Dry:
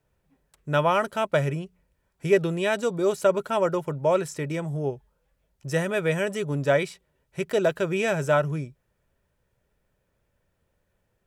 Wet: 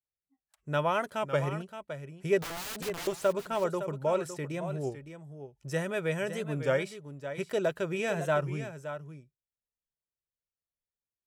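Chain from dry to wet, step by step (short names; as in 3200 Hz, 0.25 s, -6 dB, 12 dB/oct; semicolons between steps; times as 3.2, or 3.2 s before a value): spectral noise reduction 27 dB; 2.42–3.08 wrapped overs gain 27.5 dB; on a send: echo 0.561 s -10.5 dB; on the sum: record warp 33 1/3 rpm, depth 100 cents; gain -6.5 dB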